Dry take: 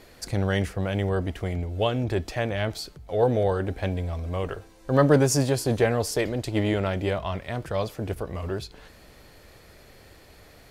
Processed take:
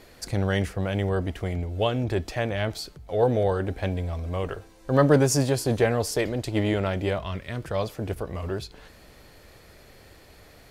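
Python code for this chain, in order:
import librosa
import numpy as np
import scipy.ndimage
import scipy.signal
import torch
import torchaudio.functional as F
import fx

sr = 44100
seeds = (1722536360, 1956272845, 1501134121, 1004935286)

y = fx.peak_eq(x, sr, hz=760.0, db=-9.5, octaves=0.8, at=(7.23, 7.64))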